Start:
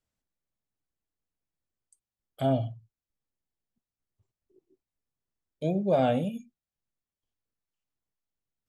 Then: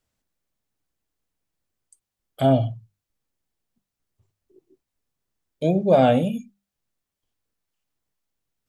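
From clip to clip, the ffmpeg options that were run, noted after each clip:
-af "bandreject=f=50:t=h:w=6,bandreject=f=100:t=h:w=6,bandreject=f=150:t=h:w=6,bandreject=f=200:t=h:w=6,volume=8dB"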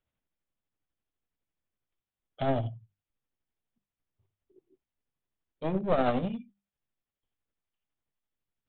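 -af "aresample=8000,aeval=exprs='clip(val(0),-1,0.0562)':c=same,aresample=44100,tremolo=f=12:d=0.43,volume=-5dB"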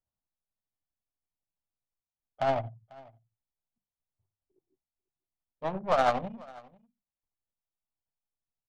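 -af "lowshelf=f=570:t=q:w=1.5:g=-10.5,adynamicsmooth=sensitivity=3:basefreq=520,aecho=1:1:494:0.0708,volume=4.5dB"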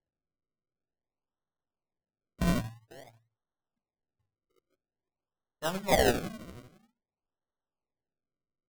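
-af "acrusher=samples=35:mix=1:aa=0.000001:lfo=1:lforange=35:lforate=0.5"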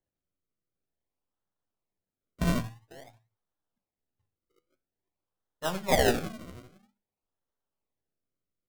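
-af "flanger=delay=9.8:depth=2.9:regen=77:speed=0.57:shape=sinusoidal,volume=5.5dB"

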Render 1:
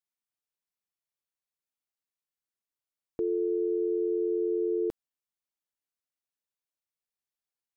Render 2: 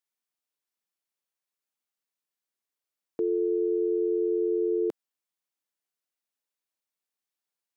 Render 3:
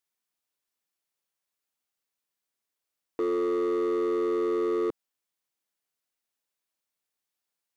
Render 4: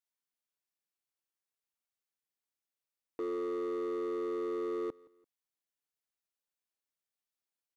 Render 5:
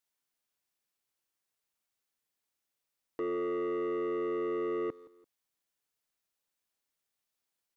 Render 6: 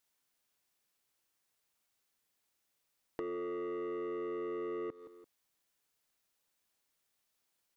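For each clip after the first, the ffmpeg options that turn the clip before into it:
-af "highpass=200,volume=2.5dB"
-af "asoftclip=type=hard:threshold=-27dB,volume=3dB"
-af "aecho=1:1:170|340:0.0631|0.024,volume=-8.5dB"
-af "asoftclip=type=tanh:threshold=-36dB,volume=6dB"
-af "acompressor=threshold=-44dB:ratio=6,volume=5dB"

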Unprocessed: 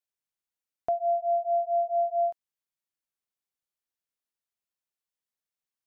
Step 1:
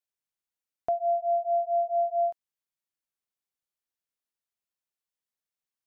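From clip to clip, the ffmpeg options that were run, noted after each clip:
-af anull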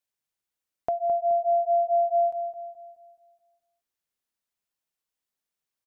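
-filter_complex "[0:a]acompressor=threshold=-27dB:ratio=6,asplit=2[a][b];[b]adelay=213,lowpass=f=890:p=1,volume=-7.5dB,asplit=2[c][d];[d]adelay=213,lowpass=f=890:p=1,volume=0.55,asplit=2[e][f];[f]adelay=213,lowpass=f=890:p=1,volume=0.55,asplit=2[g][h];[h]adelay=213,lowpass=f=890:p=1,volume=0.55,asplit=2[i][j];[j]adelay=213,lowpass=f=890:p=1,volume=0.55,asplit=2[k][l];[l]adelay=213,lowpass=f=890:p=1,volume=0.55,asplit=2[m][n];[n]adelay=213,lowpass=f=890:p=1,volume=0.55[o];[a][c][e][g][i][k][m][o]amix=inputs=8:normalize=0,volume=3.5dB"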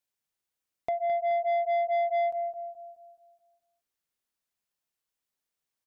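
-af "asoftclip=type=tanh:threshold=-23dB"

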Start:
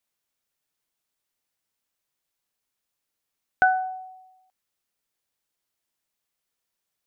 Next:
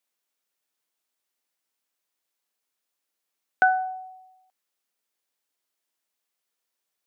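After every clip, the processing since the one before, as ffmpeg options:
-af "highpass=240"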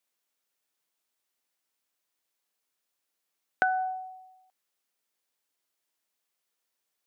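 -af "acompressor=threshold=-22dB:ratio=6"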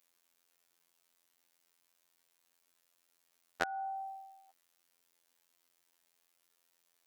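-af "acompressor=threshold=-36dB:ratio=10,afftfilt=real='hypot(re,im)*cos(PI*b)':imag='0':win_size=2048:overlap=0.75,volume=9.5dB"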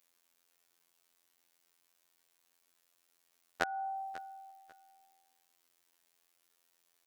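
-af "aecho=1:1:543|1086:0.141|0.0339,volume=1dB"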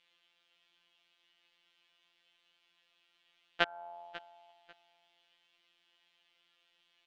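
-af "afftfilt=real='hypot(re,im)*cos(PI*b)':imag='0':win_size=1024:overlap=0.75,lowpass=f=3.1k:t=q:w=4.1,volume=6dB"

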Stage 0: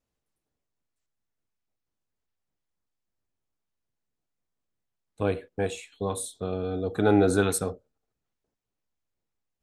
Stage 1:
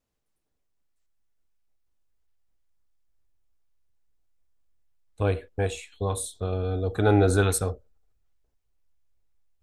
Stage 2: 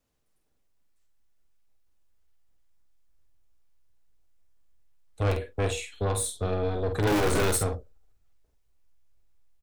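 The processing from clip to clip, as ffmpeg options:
-af "asubboost=boost=8:cutoff=67,volume=1.5dB"
-filter_complex "[0:a]acrossover=split=220[a][b];[a]aeval=exprs='(mod(11.9*val(0)+1,2)-1)/11.9':c=same[c];[c][b]amix=inputs=2:normalize=0,aeval=exprs='(tanh(20*val(0)+0.2)-tanh(0.2))/20':c=same,asplit=2[d][e];[e]adelay=48,volume=-7dB[f];[d][f]amix=inputs=2:normalize=0,volume=4dB"

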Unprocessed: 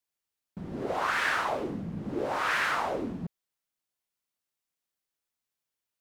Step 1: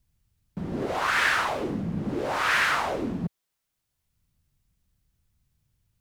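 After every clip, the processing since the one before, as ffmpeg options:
-filter_complex "[0:a]acrossover=split=130|1500[a][b][c];[a]acompressor=mode=upward:threshold=-51dB:ratio=2.5[d];[b]alimiter=level_in=4dB:limit=-24dB:level=0:latency=1:release=153,volume=-4dB[e];[d][e][c]amix=inputs=3:normalize=0,volume=6.5dB"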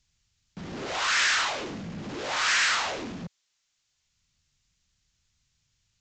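-af "aresample=16000,asoftclip=type=tanh:threshold=-27dB,aresample=44100,tiltshelf=f=1.4k:g=-9,volume=3.5dB"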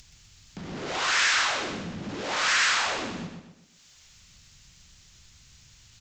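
-af "acompressor=mode=upward:threshold=-39dB:ratio=2.5,aecho=1:1:125|250|375|500|625:0.501|0.205|0.0842|0.0345|0.0142"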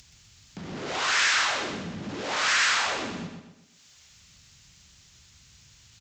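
-filter_complex "[0:a]highpass=56,asplit=2[a][b];[b]adelay=130,highpass=300,lowpass=3.4k,asoftclip=type=hard:threshold=-20.5dB,volume=-16dB[c];[a][c]amix=inputs=2:normalize=0"

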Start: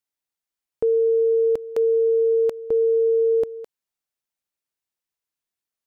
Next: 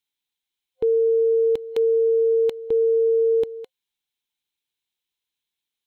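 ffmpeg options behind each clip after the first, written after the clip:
-af "superequalizer=8b=0.282:10b=0.631:12b=2:13b=3.55"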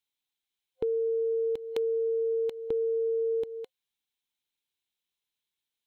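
-af "acompressor=threshold=-24dB:ratio=6,volume=-3dB"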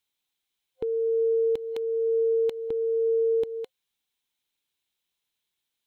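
-af "alimiter=level_in=0.5dB:limit=-24dB:level=0:latency=1:release=412,volume=-0.5dB,volume=5dB"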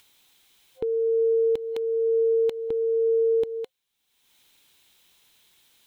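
-af "acompressor=mode=upward:threshold=-46dB:ratio=2.5,volume=2dB"

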